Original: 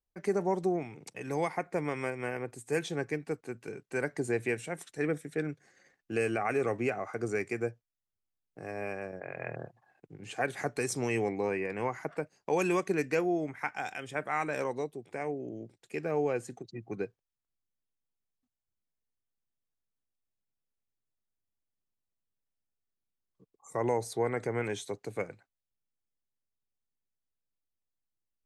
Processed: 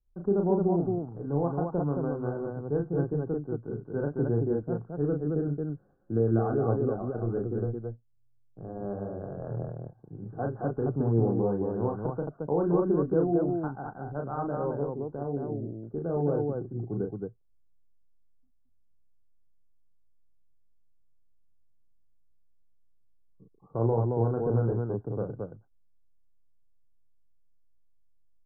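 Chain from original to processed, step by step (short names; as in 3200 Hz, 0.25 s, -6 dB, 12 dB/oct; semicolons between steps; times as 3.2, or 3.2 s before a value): steep low-pass 1500 Hz 96 dB/oct; tilt -4.5 dB/oct; 6.74–8.84 AM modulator 120 Hz, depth 30%; loudspeakers at several distances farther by 12 m -4 dB, 76 m -3 dB; gain -4.5 dB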